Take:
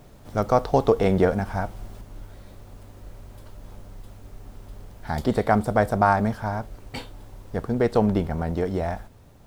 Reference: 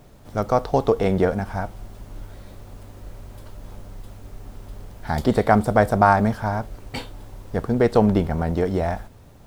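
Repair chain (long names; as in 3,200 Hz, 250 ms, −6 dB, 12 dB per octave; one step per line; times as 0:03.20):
level 0 dB, from 0:02.01 +3.5 dB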